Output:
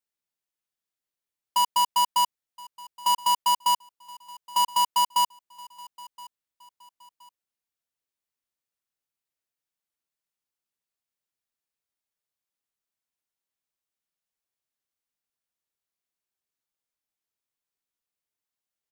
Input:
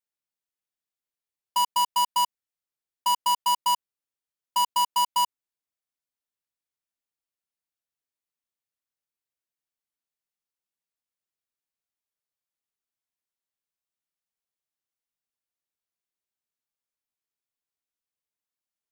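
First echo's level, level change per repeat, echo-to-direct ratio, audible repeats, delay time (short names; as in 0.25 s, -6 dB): -21.5 dB, -9.5 dB, -21.0 dB, 2, 1.021 s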